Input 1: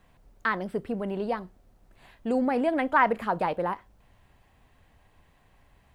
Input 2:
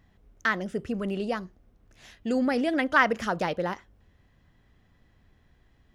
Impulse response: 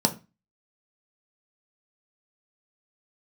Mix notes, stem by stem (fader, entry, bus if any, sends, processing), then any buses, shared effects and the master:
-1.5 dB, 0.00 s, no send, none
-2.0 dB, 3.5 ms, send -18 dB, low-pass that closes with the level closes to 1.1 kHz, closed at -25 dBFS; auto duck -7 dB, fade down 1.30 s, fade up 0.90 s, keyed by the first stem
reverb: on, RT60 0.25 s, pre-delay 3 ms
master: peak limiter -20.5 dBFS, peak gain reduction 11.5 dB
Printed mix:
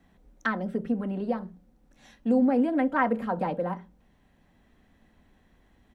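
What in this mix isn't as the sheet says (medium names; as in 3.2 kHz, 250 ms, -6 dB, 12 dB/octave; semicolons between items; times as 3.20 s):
stem 1 -1.5 dB -> -7.5 dB; master: missing peak limiter -20.5 dBFS, peak gain reduction 11.5 dB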